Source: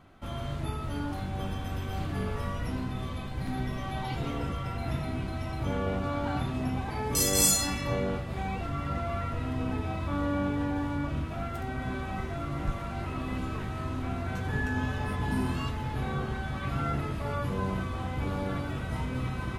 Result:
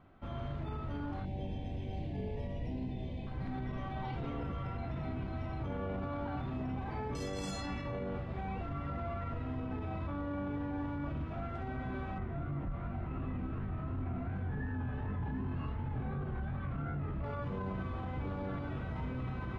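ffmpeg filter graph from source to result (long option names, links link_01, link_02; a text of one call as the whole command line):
ffmpeg -i in.wav -filter_complex "[0:a]asettb=1/sr,asplit=3[link_01][link_02][link_03];[link_01]atrim=end=1.254[link_04];[link_02]atrim=start=1.25:end=3.27,asetpts=PTS-STARTPTS,afade=type=in:duration=0.004:curve=qsin,afade=type=out:start_time=2.016:duration=0.004:curve=qsin,asuperstop=centerf=1300:order=4:qfactor=1,asplit=2[link_05][link_06];[link_06]adelay=28,volume=-13.5dB[link_07];[link_05][link_07]amix=inputs=2:normalize=0,atrim=end_sample=89082[link_08];[link_03]atrim=start=3.266[link_09];[link_04][link_08]acrossfade=duration=0.004:curve1=hsin:curve2=qsin[link_10];[link_10][link_09]acrossfade=duration=0.004:curve1=qsin:curve2=hsin,asettb=1/sr,asplit=3[link_11][link_12][link_13];[link_11]atrim=end=12.184[link_14];[link_12]atrim=start=12.18:end=17.24,asetpts=PTS-STARTPTS,afade=type=in:duration=0.004:curve=qsin,afade=type=out:start_time=5.056:duration=0.004:curve=qsin,bass=frequency=250:gain=6,treble=frequency=4000:gain=-13,flanger=delay=20:depth=7.8:speed=2.7[link_15];[link_13]atrim=start=17.236[link_16];[link_14][link_15]acrossfade=duration=0.004:curve1=hsin:curve2=qsin[link_17];[link_17][link_16]acrossfade=duration=0.004:curve1=qsin:curve2=hsin,lowpass=3800,highshelf=frequency=2400:gain=-8,alimiter=level_in=2.5dB:limit=-24dB:level=0:latency=1:release=24,volume=-2.5dB,volume=-4dB" out.wav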